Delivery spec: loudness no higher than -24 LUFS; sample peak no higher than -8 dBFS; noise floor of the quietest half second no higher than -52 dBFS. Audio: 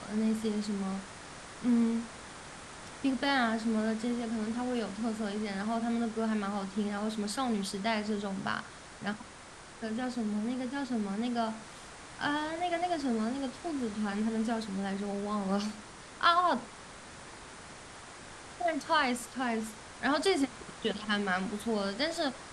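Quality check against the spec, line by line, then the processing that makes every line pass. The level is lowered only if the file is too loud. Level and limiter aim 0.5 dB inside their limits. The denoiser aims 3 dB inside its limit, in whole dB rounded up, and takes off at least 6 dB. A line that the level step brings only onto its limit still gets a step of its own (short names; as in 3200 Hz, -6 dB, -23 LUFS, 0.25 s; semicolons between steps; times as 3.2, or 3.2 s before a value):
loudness -32.5 LUFS: OK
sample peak -13.5 dBFS: OK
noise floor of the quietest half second -50 dBFS: fail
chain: denoiser 6 dB, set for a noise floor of -50 dBFS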